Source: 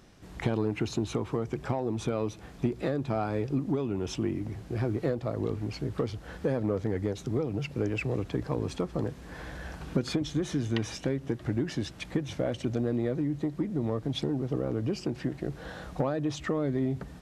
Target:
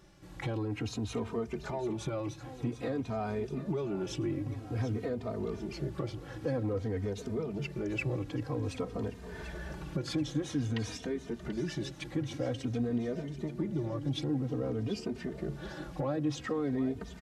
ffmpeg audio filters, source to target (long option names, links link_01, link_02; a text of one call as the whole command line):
ffmpeg -i in.wav -filter_complex "[0:a]alimiter=limit=-21.5dB:level=0:latency=1:release=18,aecho=1:1:736|1472|2208|2944|3680|4416:0.224|0.123|0.0677|0.0372|0.0205|0.0113,asplit=2[link_01][link_02];[link_02]adelay=3,afreqshift=-0.51[link_03];[link_01][link_03]amix=inputs=2:normalize=1" out.wav